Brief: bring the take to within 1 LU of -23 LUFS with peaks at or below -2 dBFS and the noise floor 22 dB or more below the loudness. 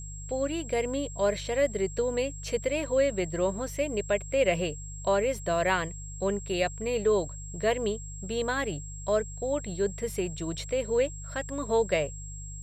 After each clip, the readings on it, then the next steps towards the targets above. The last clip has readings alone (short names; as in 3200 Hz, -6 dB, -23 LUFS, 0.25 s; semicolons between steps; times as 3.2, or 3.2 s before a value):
hum 50 Hz; harmonics up to 150 Hz; hum level -38 dBFS; steady tone 7600 Hz; tone level -43 dBFS; loudness -29.5 LUFS; peak -11.5 dBFS; loudness target -23.0 LUFS
-> de-hum 50 Hz, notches 3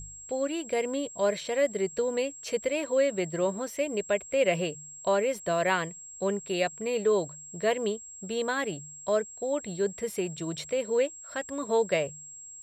hum none; steady tone 7600 Hz; tone level -43 dBFS
-> notch 7600 Hz, Q 30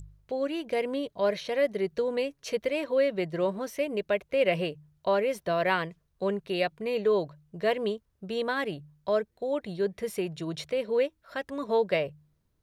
steady tone none; loudness -29.5 LUFS; peak -11.5 dBFS; loudness target -23.0 LUFS
-> gain +6.5 dB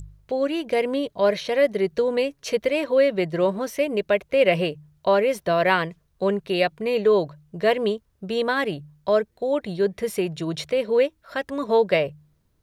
loudness -23.0 LUFS; peak -5.0 dBFS; noise floor -67 dBFS